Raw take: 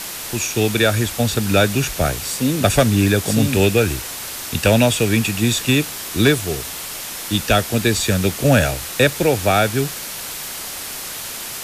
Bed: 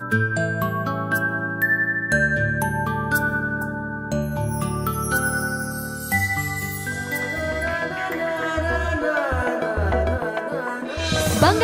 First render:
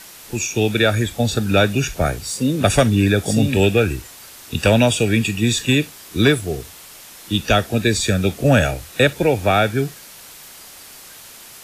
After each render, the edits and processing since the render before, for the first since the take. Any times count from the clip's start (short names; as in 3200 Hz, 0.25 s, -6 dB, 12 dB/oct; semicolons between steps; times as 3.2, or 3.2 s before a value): noise print and reduce 11 dB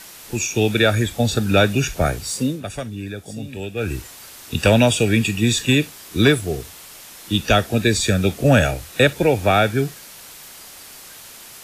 2.4–3.97 dip -14.5 dB, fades 0.22 s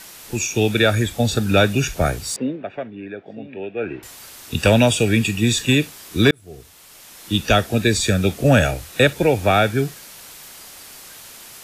2.36–4.03 speaker cabinet 240–2500 Hz, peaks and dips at 380 Hz +3 dB, 660 Hz +4 dB, 1200 Hz -5 dB; 6.31–7.35 fade in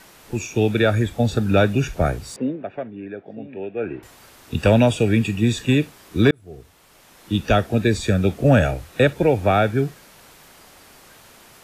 high shelf 2500 Hz -12 dB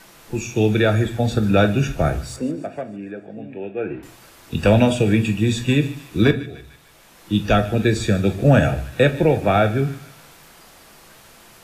thin delay 0.15 s, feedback 56%, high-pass 1400 Hz, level -16 dB; shoebox room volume 260 m³, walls furnished, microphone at 0.74 m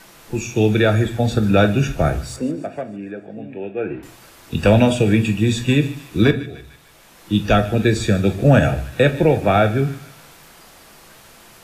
gain +1.5 dB; limiter -3 dBFS, peak gain reduction 2 dB